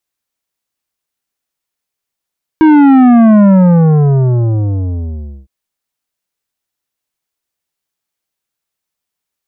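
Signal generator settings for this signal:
bass drop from 320 Hz, over 2.86 s, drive 11 dB, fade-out 2.07 s, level −4 dB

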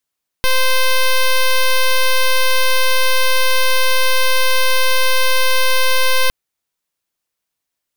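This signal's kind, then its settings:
pulse wave 519 Hz, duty 7% −12 dBFS 5.86 s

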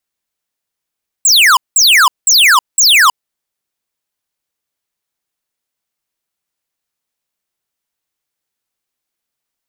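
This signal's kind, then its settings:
repeated falling chirps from 8,200 Hz, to 940 Hz, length 0.32 s square, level −7 dB, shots 4, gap 0.19 s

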